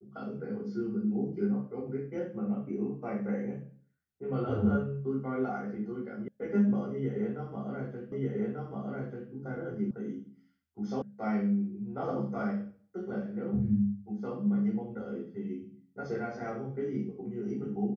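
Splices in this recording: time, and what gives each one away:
0:06.28: cut off before it has died away
0:08.12: the same again, the last 1.19 s
0:09.91: cut off before it has died away
0:11.02: cut off before it has died away

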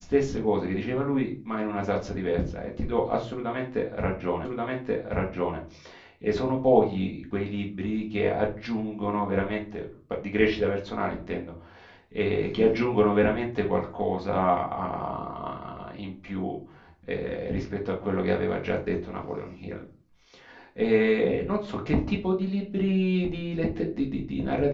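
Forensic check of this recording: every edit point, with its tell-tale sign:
0:04.45: the same again, the last 1.13 s

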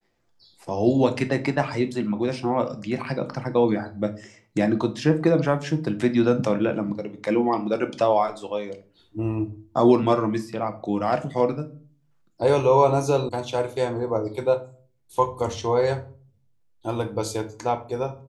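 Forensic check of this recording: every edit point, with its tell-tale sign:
0:13.29: cut off before it has died away

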